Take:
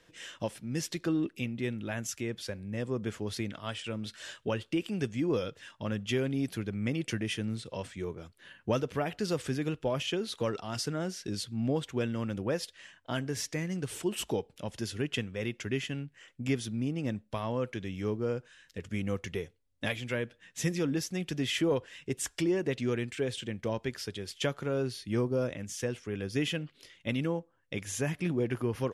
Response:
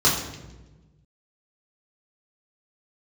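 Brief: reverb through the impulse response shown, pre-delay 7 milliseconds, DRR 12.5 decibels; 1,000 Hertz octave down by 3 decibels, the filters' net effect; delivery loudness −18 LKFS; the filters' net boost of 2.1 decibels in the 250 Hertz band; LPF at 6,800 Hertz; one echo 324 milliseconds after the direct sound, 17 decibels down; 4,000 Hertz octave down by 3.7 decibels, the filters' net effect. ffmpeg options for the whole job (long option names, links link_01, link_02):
-filter_complex "[0:a]lowpass=6800,equalizer=frequency=250:width_type=o:gain=3,equalizer=frequency=1000:width_type=o:gain=-4,equalizer=frequency=4000:width_type=o:gain=-4.5,aecho=1:1:324:0.141,asplit=2[link_01][link_02];[1:a]atrim=start_sample=2205,adelay=7[link_03];[link_02][link_03]afir=irnorm=-1:irlink=0,volume=-30dB[link_04];[link_01][link_04]amix=inputs=2:normalize=0,volume=14.5dB"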